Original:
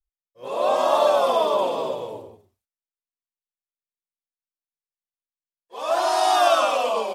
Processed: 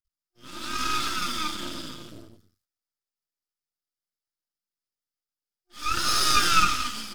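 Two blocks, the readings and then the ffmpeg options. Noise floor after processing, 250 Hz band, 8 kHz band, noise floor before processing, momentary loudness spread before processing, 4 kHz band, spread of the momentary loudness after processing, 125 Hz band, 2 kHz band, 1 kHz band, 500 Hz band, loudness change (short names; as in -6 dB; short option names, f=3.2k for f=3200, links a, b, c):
under -85 dBFS, -0.5 dB, +6.5 dB, under -85 dBFS, 14 LU, +3.0 dB, 18 LU, +9.0 dB, +2.5 dB, -7.0 dB, -24.0 dB, -4.0 dB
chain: -af "afftfilt=real='re*(1-between(b*sr/4096,360,1200))':imag='im*(1-between(b*sr/4096,360,1200))':win_size=4096:overlap=0.75,equalizer=f=1.25k:t=o:w=0.33:g=7,equalizer=f=2.5k:t=o:w=0.33:g=-8,equalizer=f=5k:t=o:w=0.33:g=11,aeval=exprs='max(val(0),0)':c=same,volume=5dB"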